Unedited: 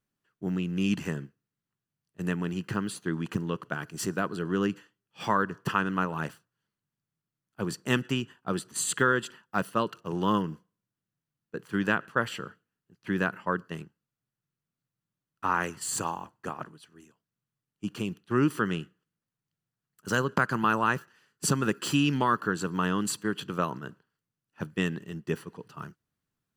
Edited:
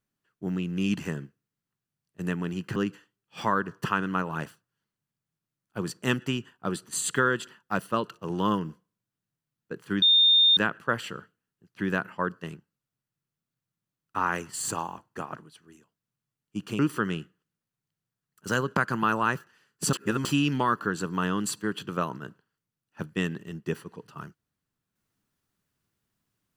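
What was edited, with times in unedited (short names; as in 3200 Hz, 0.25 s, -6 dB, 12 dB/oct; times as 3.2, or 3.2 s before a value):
2.76–4.59 cut
11.85 add tone 3640 Hz -15.5 dBFS 0.55 s
18.07–18.4 cut
21.54–21.86 reverse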